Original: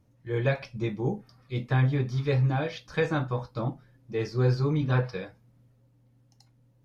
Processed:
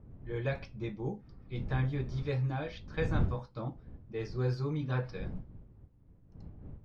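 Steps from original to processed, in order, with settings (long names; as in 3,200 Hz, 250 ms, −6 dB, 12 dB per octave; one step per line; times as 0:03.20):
wind on the microphone 120 Hz −33 dBFS
low-pass that shuts in the quiet parts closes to 2,700 Hz, open at −19 dBFS
level −8 dB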